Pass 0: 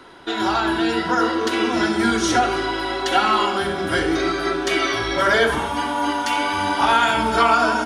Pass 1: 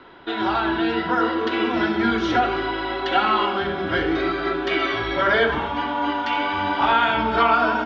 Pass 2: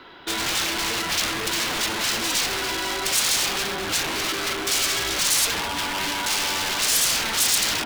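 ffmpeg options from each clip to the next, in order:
-af "lowpass=f=3.7k:w=0.5412,lowpass=f=3.7k:w=1.3066,volume=-1.5dB"
-af "aeval=exprs='0.0631*(abs(mod(val(0)/0.0631+3,4)-2)-1)':c=same,crystalizer=i=4.5:c=0,volume=-1.5dB"

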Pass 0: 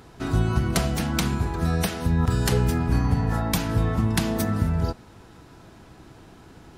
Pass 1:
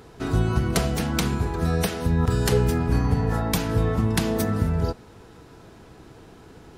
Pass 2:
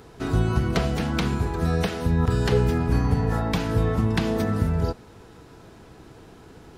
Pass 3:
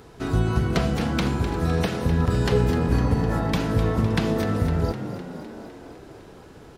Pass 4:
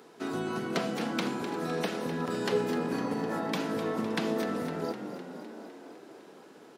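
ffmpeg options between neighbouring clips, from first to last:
-af "equalizer=f=450:t=o:w=0.34:g=7"
-filter_complex "[0:a]acrossover=split=4800[a][b];[b]acompressor=threshold=-45dB:ratio=4:attack=1:release=60[c];[a][c]amix=inputs=2:normalize=0"
-filter_complex "[0:a]asplit=9[a][b][c][d][e][f][g][h][i];[b]adelay=254,afreqshift=48,volume=-11dB[j];[c]adelay=508,afreqshift=96,volume=-14.9dB[k];[d]adelay=762,afreqshift=144,volume=-18.8dB[l];[e]adelay=1016,afreqshift=192,volume=-22.6dB[m];[f]adelay=1270,afreqshift=240,volume=-26.5dB[n];[g]adelay=1524,afreqshift=288,volume=-30.4dB[o];[h]adelay=1778,afreqshift=336,volume=-34.3dB[p];[i]adelay=2032,afreqshift=384,volume=-38.1dB[q];[a][j][k][l][m][n][o][p][q]amix=inputs=9:normalize=0"
-af "highpass=f=210:w=0.5412,highpass=f=210:w=1.3066,volume=-5dB"

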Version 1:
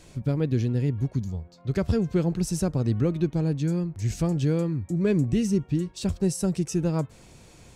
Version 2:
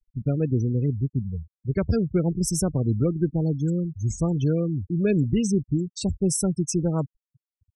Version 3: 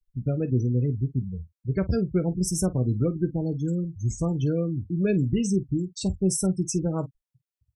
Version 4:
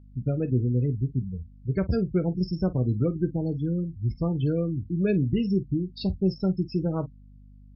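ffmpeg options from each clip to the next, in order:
-af "aemphasis=mode=production:type=cd,afftfilt=real='re*gte(hypot(re,im),0.0355)':imag='im*gte(hypot(re,im),0.0355)':win_size=1024:overlap=0.75,volume=1.5dB"
-af "aecho=1:1:16|48:0.299|0.141,volume=-2dB"
-af "aeval=exprs='val(0)+0.00398*(sin(2*PI*50*n/s)+sin(2*PI*2*50*n/s)/2+sin(2*PI*3*50*n/s)/3+sin(2*PI*4*50*n/s)/4+sin(2*PI*5*50*n/s)/5)':c=same" -ar 12000 -c:a libmp3lame -b:a 32k

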